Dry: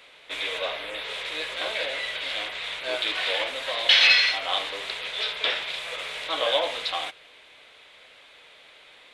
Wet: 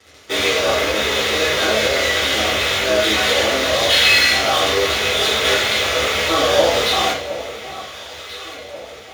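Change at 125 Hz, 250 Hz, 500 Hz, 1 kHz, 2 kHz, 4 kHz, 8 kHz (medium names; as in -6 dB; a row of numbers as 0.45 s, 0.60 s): no reading, +21.0 dB, +14.5 dB, +12.5 dB, +8.5 dB, +7.5 dB, +19.5 dB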